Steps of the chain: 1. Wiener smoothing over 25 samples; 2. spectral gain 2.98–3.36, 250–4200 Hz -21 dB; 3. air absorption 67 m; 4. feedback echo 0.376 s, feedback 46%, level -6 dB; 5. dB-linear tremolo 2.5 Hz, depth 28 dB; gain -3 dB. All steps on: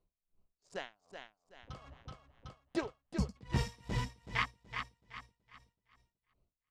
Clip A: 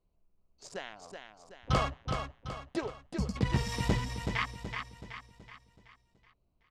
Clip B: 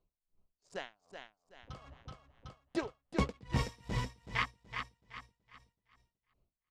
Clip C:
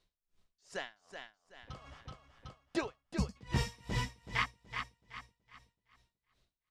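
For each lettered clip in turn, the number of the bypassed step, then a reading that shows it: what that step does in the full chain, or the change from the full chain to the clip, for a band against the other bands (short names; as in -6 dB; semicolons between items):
5, momentary loudness spread change +3 LU; 2, 500 Hz band +1.5 dB; 1, 8 kHz band +3.0 dB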